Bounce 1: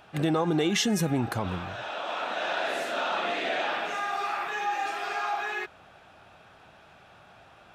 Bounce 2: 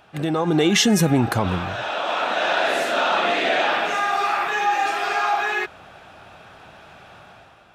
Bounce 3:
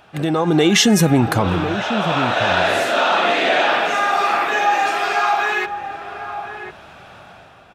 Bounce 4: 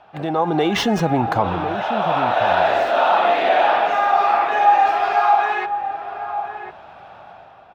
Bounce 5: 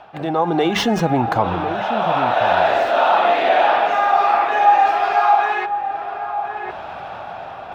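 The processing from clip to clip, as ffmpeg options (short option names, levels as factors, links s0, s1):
-af "dynaudnorm=f=110:g=9:m=2.51,volume=1.12"
-filter_complex "[0:a]asplit=2[s0][s1];[s1]adelay=1050,volume=0.355,highshelf=f=4000:g=-23.6[s2];[s0][s2]amix=inputs=2:normalize=0,volume=1.5"
-filter_complex "[0:a]equalizer=f=790:t=o:w=1.1:g=11.5,acrossover=split=410|5600[s0][s1][s2];[s2]acrusher=samples=17:mix=1:aa=0.000001:lfo=1:lforange=10.2:lforate=3.4[s3];[s0][s1][s3]amix=inputs=3:normalize=0,volume=0.447"
-af "areverse,acompressor=mode=upward:threshold=0.0794:ratio=2.5,areverse,bandreject=f=50:t=h:w=6,bandreject=f=100:t=h:w=6,bandreject=f=150:t=h:w=6,bandreject=f=200:t=h:w=6,volume=1.12"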